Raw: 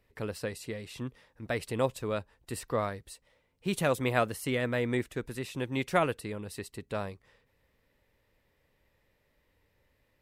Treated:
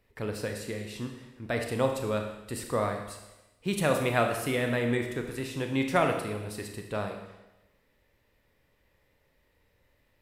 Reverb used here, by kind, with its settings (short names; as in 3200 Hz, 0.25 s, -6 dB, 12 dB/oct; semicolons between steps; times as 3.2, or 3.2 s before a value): Schroeder reverb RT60 1 s, combs from 26 ms, DRR 3.5 dB; gain +1 dB